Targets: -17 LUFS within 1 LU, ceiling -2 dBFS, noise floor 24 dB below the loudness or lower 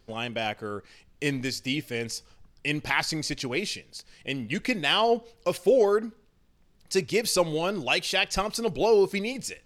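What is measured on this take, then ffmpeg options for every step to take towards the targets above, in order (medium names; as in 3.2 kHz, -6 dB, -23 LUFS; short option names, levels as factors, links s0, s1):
loudness -26.5 LUFS; peak level -8.5 dBFS; loudness target -17.0 LUFS
-> -af "volume=2.99,alimiter=limit=0.794:level=0:latency=1"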